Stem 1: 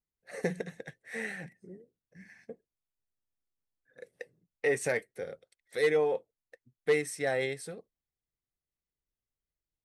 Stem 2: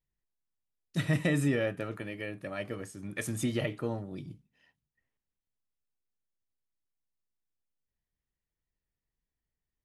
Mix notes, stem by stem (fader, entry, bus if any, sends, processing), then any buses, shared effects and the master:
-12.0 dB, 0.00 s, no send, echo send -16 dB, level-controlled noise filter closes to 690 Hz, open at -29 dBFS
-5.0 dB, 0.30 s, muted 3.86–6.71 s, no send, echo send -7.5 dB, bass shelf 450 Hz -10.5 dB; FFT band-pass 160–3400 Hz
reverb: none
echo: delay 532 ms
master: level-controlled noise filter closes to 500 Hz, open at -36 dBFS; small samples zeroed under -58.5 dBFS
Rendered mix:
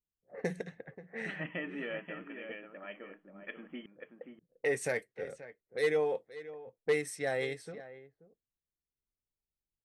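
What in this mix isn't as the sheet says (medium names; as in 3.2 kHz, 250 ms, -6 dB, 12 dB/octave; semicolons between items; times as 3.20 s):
stem 1 -12.0 dB -> -3.0 dB; master: missing small samples zeroed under -58.5 dBFS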